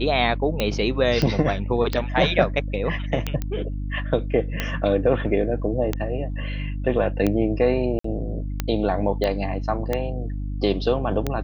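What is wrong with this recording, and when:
hum 50 Hz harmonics 6 -28 dBFS
tick 45 rpm -9 dBFS
1.22 s: pop -10 dBFS
3.42 s: pop -14 dBFS
7.99–8.04 s: dropout 54 ms
9.24 s: pop -13 dBFS

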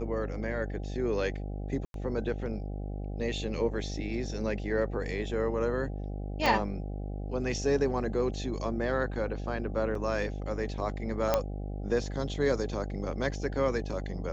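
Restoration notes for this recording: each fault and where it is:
buzz 50 Hz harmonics 16 -36 dBFS
1.85–1.94 s: dropout 92 ms
6.46 s: pop
9.95 s: dropout 2.5 ms
11.34 s: pop -11 dBFS

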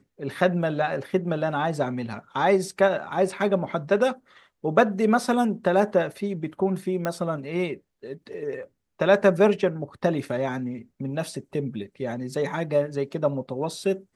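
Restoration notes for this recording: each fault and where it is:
7.05 s: pop -14 dBFS

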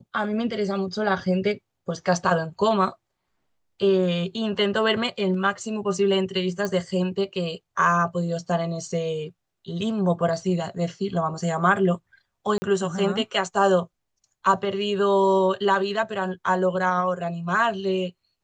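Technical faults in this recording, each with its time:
6.65 s: pop -14 dBFS
12.58–12.62 s: dropout 40 ms

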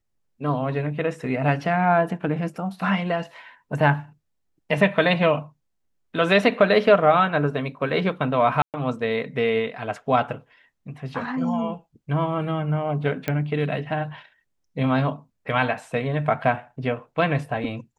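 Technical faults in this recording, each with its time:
8.62–8.74 s: dropout 118 ms
13.28 s: pop -11 dBFS

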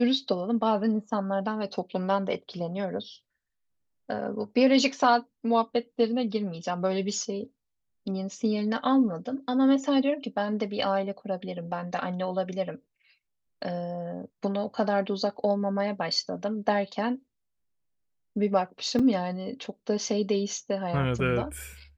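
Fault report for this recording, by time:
18.99 s: dropout 4.4 ms

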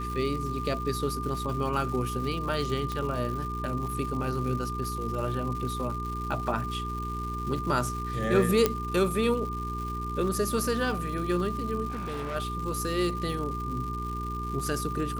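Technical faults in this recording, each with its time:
crackle 280 per s -36 dBFS
hum 60 Hz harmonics 7 -35 dBFS
whine 1.2 kHz -34 dBFS
2.92 s: pop -19 dBFS
8.66 s: pop -8 dBFS
11.90–12.36 s: clipped -30.5 dBFS

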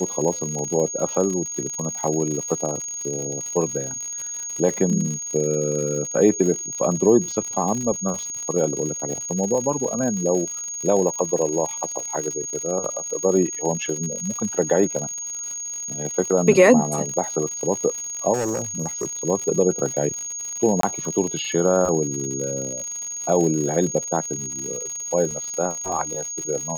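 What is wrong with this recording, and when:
crackle 120 per s -28 dBFS
whine 6.6 kHz -28 dBFS
18.33–19.24 s: clipped -20.5 dBFS
20.81–20.83 s: dropout 23 ms
25.31 s: dropout 2.4 ms

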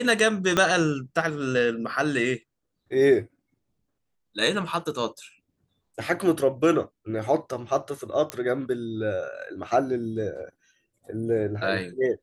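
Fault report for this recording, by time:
0.57 s: pop -8 dBFS
8.30 s: pop -13 dBFS

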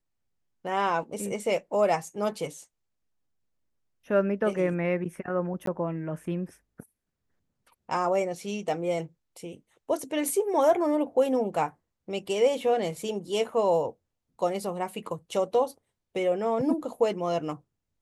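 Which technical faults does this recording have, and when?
5.66–5.67 s: dropout 13 ms

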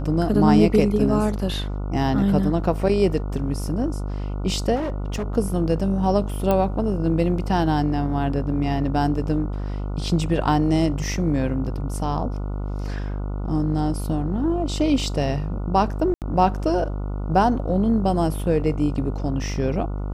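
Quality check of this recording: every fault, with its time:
buzz 50 Hz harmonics 29 -27 dBFS
4.75–5.26 s: clipped -22.5 dBFS
6.51 s: pop -9 dBFS
16.14–16.22 s: dropout 78 ms

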